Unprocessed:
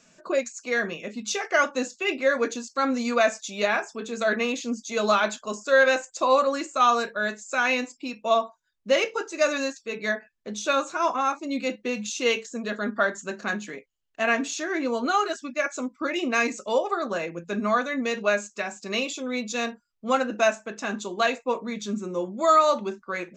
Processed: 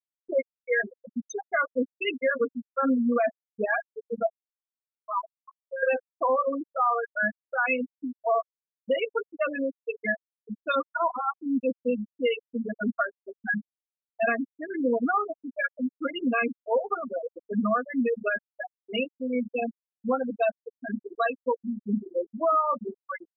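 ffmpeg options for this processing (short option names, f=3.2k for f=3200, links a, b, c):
-filter_complex "[0:a]asettb=1/sr,asplit=3[a][b][c];[a]atrim=end=4.264[d];[b]atrim=start=4.26:end=5.83,asetpts=PTS-STARTPTS,afade=t=in:d=0.004:c=qsin,afade=t=out:st=1.566:d=0.004:c=qsin,bandpass=f=980:t=q:w=4.7[e];[c]atrim=start=5.826[f];[d][e]acrossfade=d=0.004:c1=hsin:c2=qsin[g];[g][f]acrossfade=d=0.004:c1=qsin:c2=hsin,afftfilt=real='re*gte(hypot(re,im),0.224)':imag='im*gte(hypot(re,im),0.224)':win_size=1024:overlap=0.75,aecho=1:1:4.2:0.59,alimiter=limit=-16dB:level=0:latency=1:release=273"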